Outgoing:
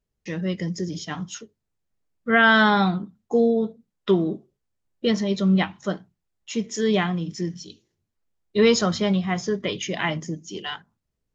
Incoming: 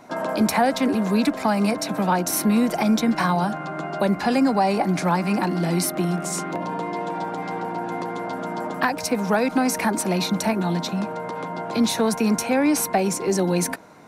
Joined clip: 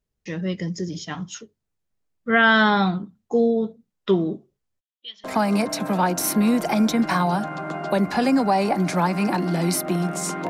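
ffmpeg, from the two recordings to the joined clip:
-filter_complex "[0:a]asplit=3[a][b][c];[a]afade=t=out:st=4.79:d=0.02[d];[b]bandpass=f=3.3k:t=q:w=8.4:csg=0,afade=t=in:st=4.79:d=0.02,afade=t=out:st=5.24:d=0.02[e];[c]afade=t=in:st=5.24:d=0.02[f];[d][e][f]amix=inputs=3:normalize=0,apad=whole_dur=10.49,atrim=end=10.49,atrim=end=5.242[g];[1:a]atrim=start=1.328:end=6.58[h];[g][h]acrossfade=d=0.004:c1=hsin:c2=hsin"

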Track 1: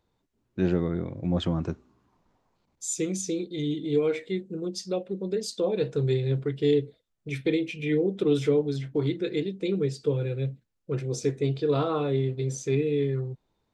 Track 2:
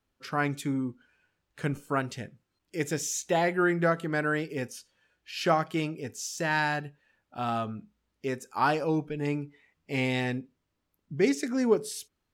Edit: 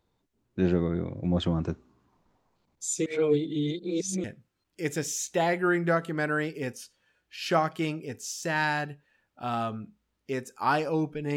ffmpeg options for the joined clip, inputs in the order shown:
-filter_complex "[0:a]apad=whole_dur=11.36,atrim=end=11.36,asplit=2[a][b];[a]atrim=end=3.062[c];[b]atrim=start=3.058:end=4.242,asetpts=PTS-STARTPTS,areverse[d];[1:a]atrim=start=2.188:end=9.31[e];[c][d]acrossfade=d=0.004:c1=hsin:c2=hsin[f];[f][e]acrossfade=d=0.004:c1=hsin:c2=hsin"

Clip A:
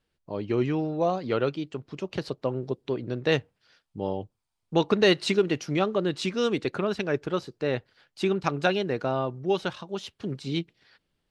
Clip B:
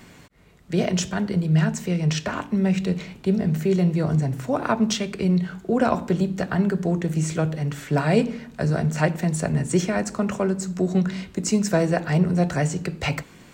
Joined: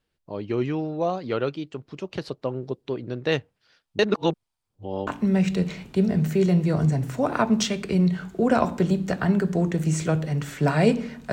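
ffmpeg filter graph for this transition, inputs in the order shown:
-filter_complex "[0:a]apad=whole_dur=11.32,atrim=end=11.32,asplit=2[a][b];[a]atrim=end=3.992[c];[b]atrim=start=3.988:end=5.072,asetpts=PTS-STARTPTS,areverse[d];[1:a]atrim=start=2.368:end=8.62[e];[c][d]acrossfade=d=0.004:c1=hsin:c2=hsin[f];[f][e]acrossfade=d=0.004:c1=hsin:c2=hsin"

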